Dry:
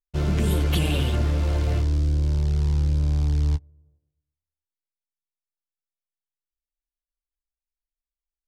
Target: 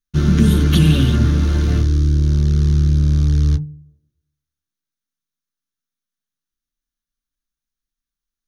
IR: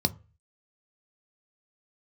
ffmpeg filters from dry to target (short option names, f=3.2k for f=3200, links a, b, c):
-filter_complex "[0:a]bandreject=f=5.2k:w=23,bandreject=f=49.75:t=h:w=4,bandreject=f=99.5:t=h:w=4,bandreject=f=149.25:t=h:w=4,bandreject=f=199:t=h:w=4,bandreject=f=248.75:t=h:w=4,bandreject=f=298.5:t=h:w=4,bandreject=f=348.25:t=h:w=4,bandreject=f=398:t=h:w=4,bandreject=f=447.75:t=h:w=4,bandreject=f=497.5:t=h:w=4,asplit=2[a][b];[1:a]atrim=start_sample=2205,asetrate=66150,aresample=44100[c];[b][c]afir=irnorm=-1:irlink=0,volume=-8.5dB[d];[a][d]amix=inputs=2:normalize=0,volume=5.5dB"